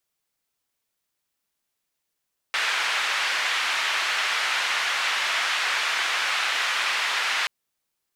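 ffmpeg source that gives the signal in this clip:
ffmpeg -f lavfi -i "anoisesrc=color=white:duration=4.93:sample_rate=44100:seed=1,highpass=frequency=1300,lowpass=frequency=2400,volume=-7.9dB" out.wav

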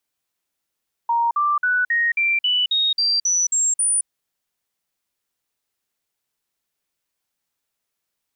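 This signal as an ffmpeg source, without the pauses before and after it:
ffmpeg -f lavfi -i "aevalsrc='0.158*clip(min(mod(t,0.27),0.22-mod(t,0.27))/0.005,0,1)*sin(2*PI*935*pow(2,floor(t/0.27)/3)*mod(t,0.27))':duration=2.97:sample_rate=44100" out.wav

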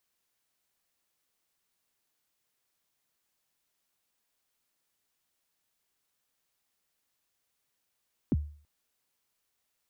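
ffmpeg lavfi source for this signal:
ffmpeg -f lavfi -i "aevalsrc='0.1*pow(10,-3*t/0.45)*sin(2*PI*(340*0.033/log(74/340)*(exp(log(74/340)*min(t,0.033)/0.033)-1)+74*max(t-0.033,0)))':duration=0.33:sample_rate=44100" out.wav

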